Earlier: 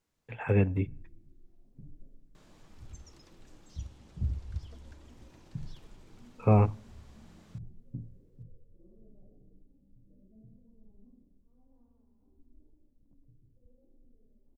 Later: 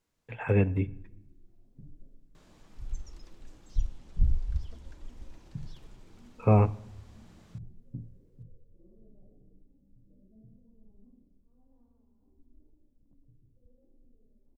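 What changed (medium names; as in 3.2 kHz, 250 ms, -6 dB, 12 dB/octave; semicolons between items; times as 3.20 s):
speech: send +10.0 dB; second sound: remove high-pass 67 Hz 24 dB/octave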